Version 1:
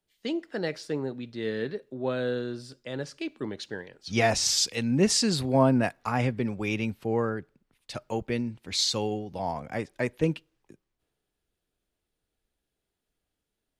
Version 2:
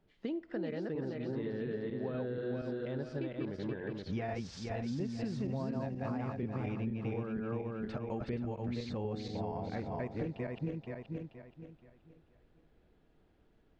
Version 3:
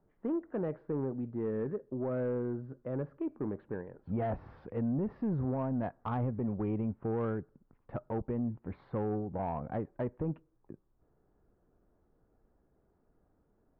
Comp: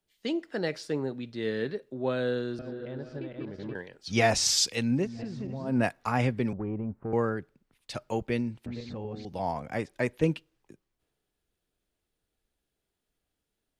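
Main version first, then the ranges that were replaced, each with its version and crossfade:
1
0:02.59–0:03.75: punch in from 2
0:05.01–0:05.72: punch in from 2, crossfade 0.16 s
0:06.53–0:07.13: punch in from 3
0:08.66–0:09.25: punch in from 2

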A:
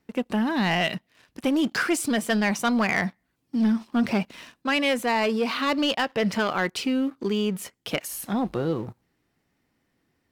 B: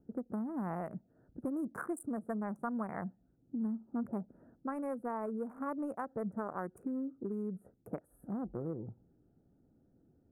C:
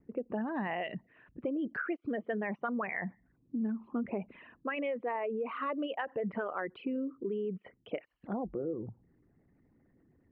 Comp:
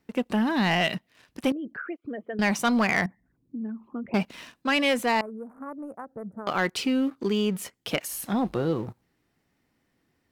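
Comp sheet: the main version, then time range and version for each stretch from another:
A
0:01.52–0:02.39: punch in from C
0:03.06–0:04.14: punch in from C
0:05.21–0:06.47: punch in from B

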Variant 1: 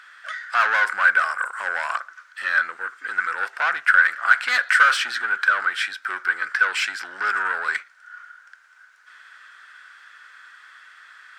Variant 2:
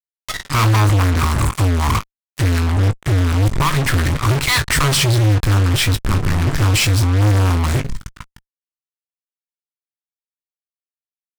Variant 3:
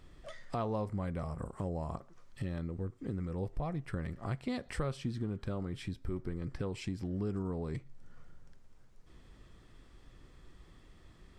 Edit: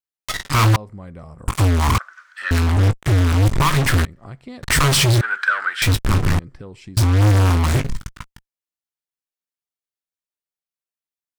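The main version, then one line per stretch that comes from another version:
2
0:00.76–0:01.48: punch in from 3
0:01.98–0:02.51: punch in from 1
0:04.05–0:04.63: punch in from 3
0:05.21–0:05.82: punch in from 1
0:06.39–0:06.97: punch in from 3

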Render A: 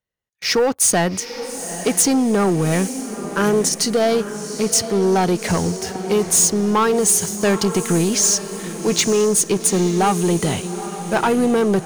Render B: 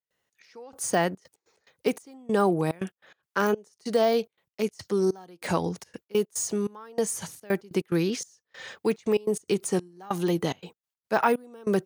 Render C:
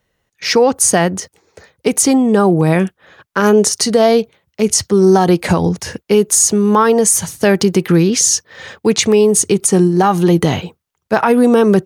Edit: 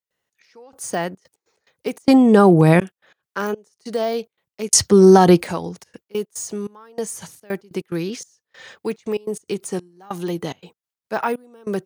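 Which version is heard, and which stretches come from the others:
B
0:02.08–0:02.80: punch in from C
0:04.73–0:05.44: punch in from C
not used: A

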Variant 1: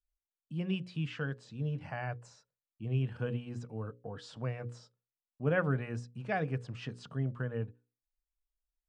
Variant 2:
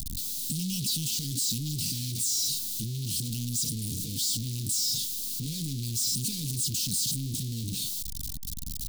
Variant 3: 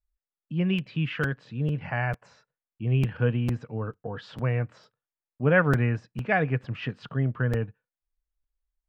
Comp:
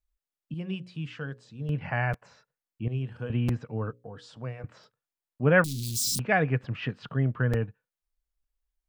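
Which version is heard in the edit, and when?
3
0:00.54–0:01.69: punch in from 1
0:02.88–0:03.30: punch in from 1
0:03.93–0:04.64: punch in from 1
0:05.64–0:06.19: punch in from 2

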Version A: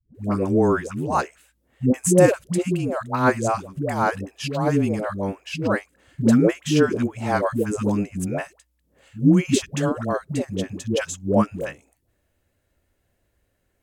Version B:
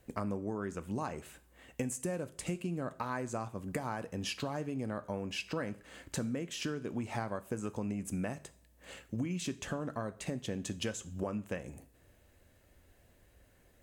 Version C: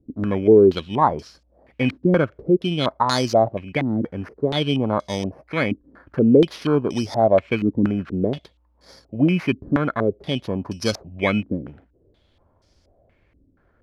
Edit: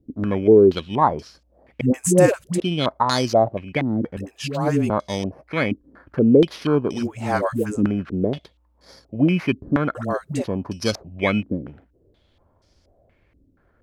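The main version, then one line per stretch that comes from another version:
C
0:01.81–0:02.60: punch in from A
0:04.17–0:04.90: punch in from A
0:07.00–0:07.75: punch in from A, crossfade 0.16 s
0:09.95–0:10.44: punch in from A
not used: B

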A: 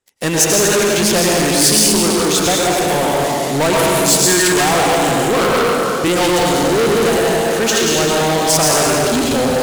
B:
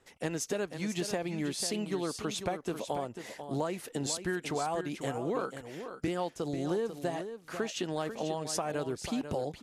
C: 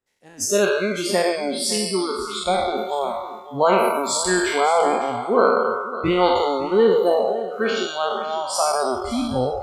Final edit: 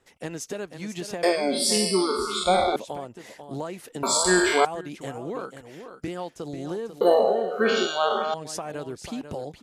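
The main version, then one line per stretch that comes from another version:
B
0:01.23–0:02.76: punch in from C
0:04.03–0:04.65: punch in from C
0:07.01–0:08.34: punch in from C
not used: A

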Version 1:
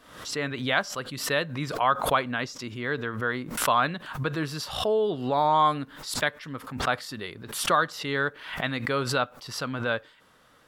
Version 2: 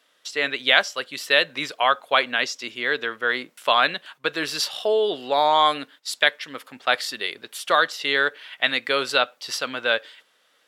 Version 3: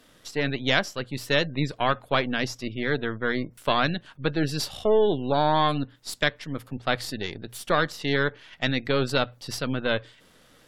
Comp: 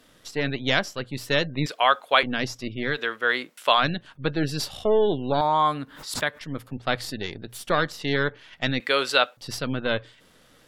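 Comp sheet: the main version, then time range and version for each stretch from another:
3
0:01.66–0:02.23: punch in from 2
0:02.94–0:03.80: punch in from 2, crossfade 0.10 s
0:05.41–0:06.41: punch in from 1
0:08.80–0:09.37: punch in from 2

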